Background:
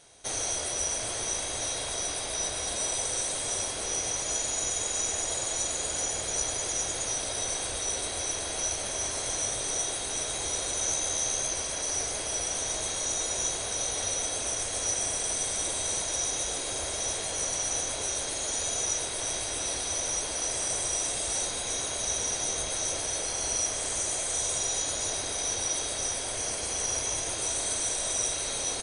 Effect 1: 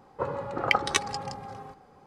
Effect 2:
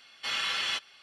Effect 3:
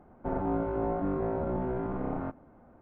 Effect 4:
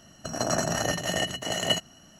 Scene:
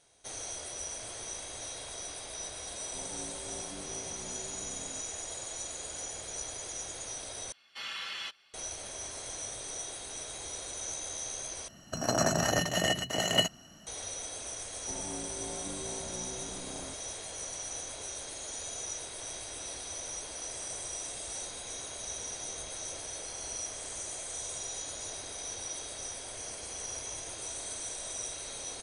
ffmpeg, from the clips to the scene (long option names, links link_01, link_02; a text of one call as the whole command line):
ffmpeg -i bed.wav -i cue0.wav -i cue1.wav -i cue2.wav -i cue3.wav -filter_complex "[3:a]asplit=2[link_01][link_02];[0:a]volume=-9.5dB[link_03];[2:a]highpass=51[link_04];[link_03]asplit=3[link_05][link_06][link_07];[link_05]atrim=end=7.524[link_08];[link_04]atrim=end=1.02,asetpts=PTS-STARTPTS,volume=-8.5dB[link_09];[link_06]atrim=start=8.536:end=11.684[link_10];[4:a]atrim=end=2.19,asetpts=PTS-STARTPTS,volume=-1dB[link_11];[link_07]atrim=start=13.866[link_12];[link_01]atrim=end=2.81,asetpts=PTS-STARTPTS,volume=-16.5dB,afade=type=in:duration=0.004:curve=hsin,afade=type=out:start_time=2.806:duration=0.004:curve=hsin,adelay=2690[link_13];[link_02]atrim=end=2.81,asetpts=PTS-STARTPTS,volume=-12.5dB,afade=type=in:duration=0.004:curve=hsin,afade=type=out:start_time=2.806:duration=0.004:curve=hsin,adelay=14630[link_14];[link_08][link_09]acrossfade=duration=0.004:curve1=hsin:curve2=hsin[link_15];[link_15][link_10]acrossfade=duration=0.004:curve1=hsin:curve2=hsin[link_16];[link_16][link_11]acrossfade=duration=0.004:curve1=hsin:curve2=hsin[link_17];[link_17][link_12]acrossfade=duration=0.004:curve1=hsin:curve2=hsin[link_18];[link_18][link_13][link_14]amix=inputs=3:normalize=0" out.wav